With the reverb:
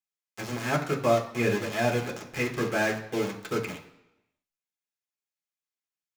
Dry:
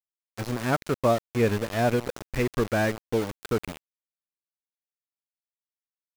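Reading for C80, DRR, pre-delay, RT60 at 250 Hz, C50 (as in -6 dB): 13.0 dB, -1.5 dB, 3 ms, 0.75 s, 10.0 dB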